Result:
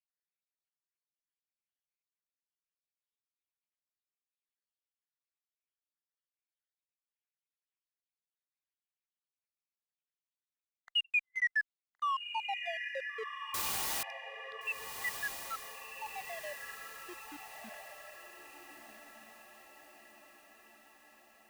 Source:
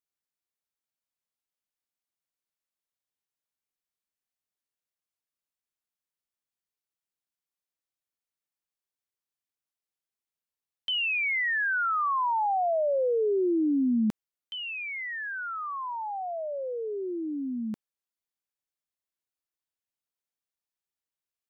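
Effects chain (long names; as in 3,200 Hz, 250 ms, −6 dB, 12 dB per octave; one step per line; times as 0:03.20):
time-frequency cells dropped at random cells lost 77%
in parallel at −3 dB: comparator with hysteresis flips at −47.5 dBFS
on the sum: resonant band-pass 2,400 Hz, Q 0.98
0:13.54–0:14.03: bit-depth reduction 6 bits, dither triangular
feedback delay with all-pass diffusion 1,448 ms, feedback 53%, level −6.5 dB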